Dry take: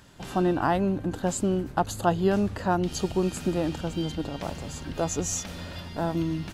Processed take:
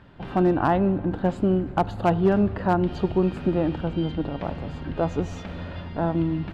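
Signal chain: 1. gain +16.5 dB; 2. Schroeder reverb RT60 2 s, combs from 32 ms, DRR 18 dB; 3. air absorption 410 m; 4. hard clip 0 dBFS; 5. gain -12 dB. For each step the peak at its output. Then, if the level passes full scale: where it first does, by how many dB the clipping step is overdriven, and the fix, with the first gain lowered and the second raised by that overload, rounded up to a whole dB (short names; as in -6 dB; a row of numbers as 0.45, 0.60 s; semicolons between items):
+7.5, +7.5, +5.5, 0.0, -12.0 dBFS; step 1, 5.5 dB; step 1 +10.5 dB, step 5 -6 dB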